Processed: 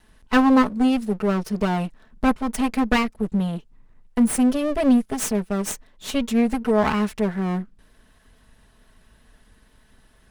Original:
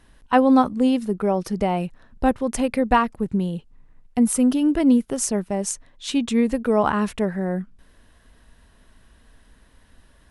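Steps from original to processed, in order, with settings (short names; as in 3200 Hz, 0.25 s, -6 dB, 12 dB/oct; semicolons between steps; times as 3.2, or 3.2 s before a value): minimum comb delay 4.6 ms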